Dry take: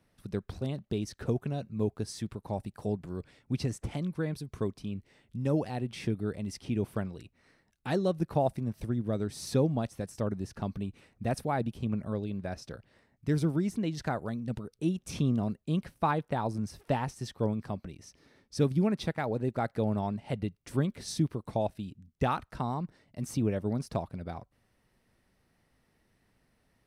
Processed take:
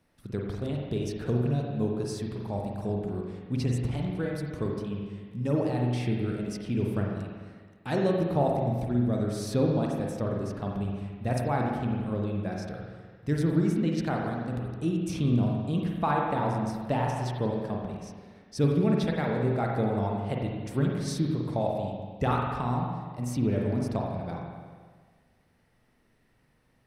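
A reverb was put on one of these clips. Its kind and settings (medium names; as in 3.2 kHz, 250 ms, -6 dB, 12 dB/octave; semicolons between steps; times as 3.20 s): spring tank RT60 1.6 s, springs 41/49 ms, chirp 45 ms, DRR -1 dB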